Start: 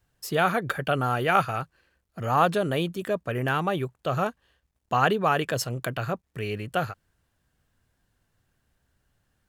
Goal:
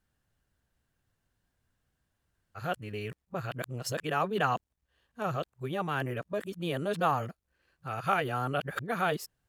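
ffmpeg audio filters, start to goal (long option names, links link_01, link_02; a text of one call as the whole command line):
ffmpeg -i in.wav -af "areverse,volume=-6.5dB" out.wav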